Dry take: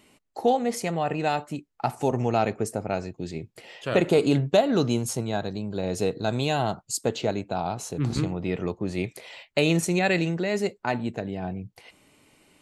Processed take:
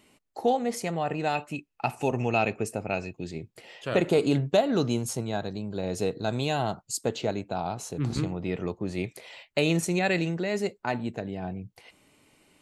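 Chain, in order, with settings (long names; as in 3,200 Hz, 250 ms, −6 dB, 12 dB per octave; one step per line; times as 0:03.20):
0:01.35–0:03.24: parametric band 2,600 Hz +14.5 dB 0.21 octaves
level −2.5 dB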